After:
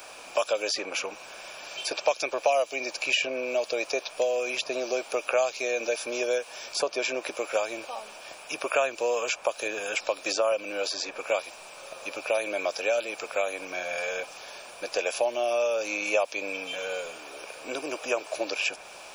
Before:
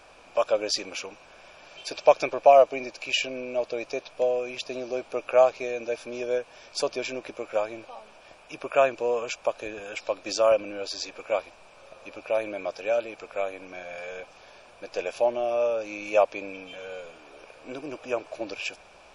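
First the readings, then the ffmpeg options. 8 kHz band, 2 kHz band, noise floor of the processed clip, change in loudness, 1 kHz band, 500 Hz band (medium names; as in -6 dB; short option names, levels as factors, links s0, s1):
+5.5 dB, +4.5 dB, -46 dBFS, -2.0 dB, -4.0 dB, -3.0 dB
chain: -filter_complex "[0:a]aemphasis=mode=production:type=bsi,acrossover=split=320|2400[s0][s1][s2];[s0]acompressor=threshold=0.002:ratio=4[s3];[s1]acompressor=threshold=0.0282:ratio=4[s4];[s2]acompressor=threshold=0.01:ratio=4[s5];[s3][s4][s5]amix=inputs=3:normalize=0,volume=2.11"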